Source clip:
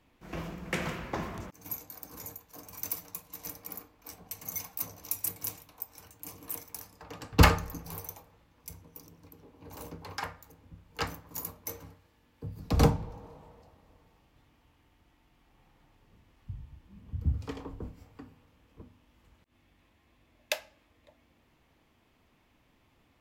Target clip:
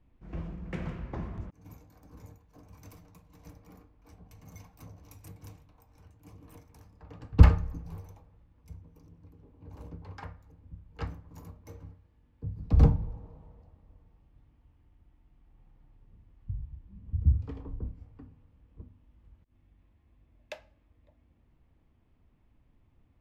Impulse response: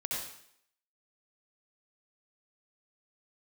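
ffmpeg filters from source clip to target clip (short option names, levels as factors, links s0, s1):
-af "aemphasis=mode=reproduction:type=riaa,volume=0.355"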